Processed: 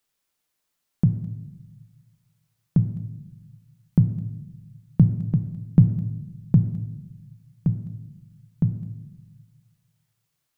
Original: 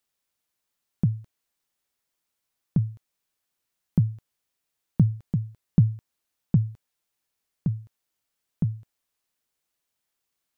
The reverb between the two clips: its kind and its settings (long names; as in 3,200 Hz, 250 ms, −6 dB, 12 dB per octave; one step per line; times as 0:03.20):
rectangular room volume 390 cubic metres, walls mixed, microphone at 0.45 metres
level +3 dB